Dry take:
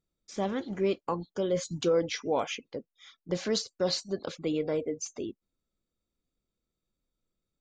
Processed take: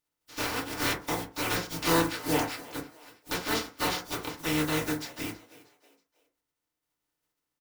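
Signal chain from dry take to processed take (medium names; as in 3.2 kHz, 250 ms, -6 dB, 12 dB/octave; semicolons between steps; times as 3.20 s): spectral contrast reduction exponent 0.22; formant shift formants -4 st; on a send: frequency-shifting echo 319 ms, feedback 39%, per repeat +85 Hz, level -19 dB; on the sum: FDN reverb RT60 0.35 s, low-frequency decay 1×, high-frequency decay 0.35×, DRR -3 dB; trim -4 dB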